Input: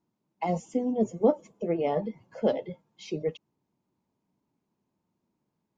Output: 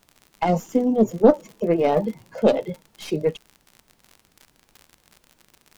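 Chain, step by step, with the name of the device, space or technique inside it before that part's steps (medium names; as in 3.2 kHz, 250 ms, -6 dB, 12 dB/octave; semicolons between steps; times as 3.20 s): record under a worn stylus (tracing distortion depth 0.091 ms; crackle 58 per s -41 dBFS; pink noise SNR 41 dB); trim +8 dB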